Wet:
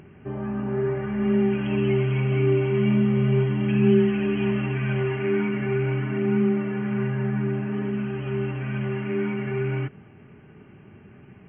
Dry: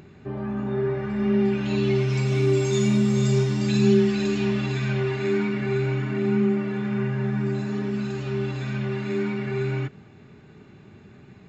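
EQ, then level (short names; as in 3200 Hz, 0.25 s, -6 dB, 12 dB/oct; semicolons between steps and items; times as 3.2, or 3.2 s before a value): brick-wall FIR low-pass 3300 Hz; 0.0 dB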